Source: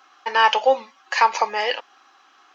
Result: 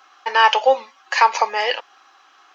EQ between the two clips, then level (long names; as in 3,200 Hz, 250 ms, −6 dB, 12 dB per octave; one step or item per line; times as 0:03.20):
high-pass filter 340 Hz 12 dB per octave
+2.5 dB